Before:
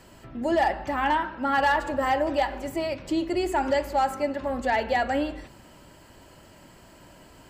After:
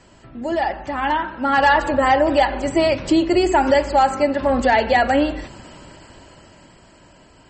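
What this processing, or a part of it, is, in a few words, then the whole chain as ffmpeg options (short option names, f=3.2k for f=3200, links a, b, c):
low-bitrate web radio: -af "dynaudnorm=f=210:g=17:m=11.5dB,alimiter=limit=-8.5dB:level=0:latency=1:release=404,volume=1.5dB" -ar 44100 -c:a libmp3lame -b:a 32k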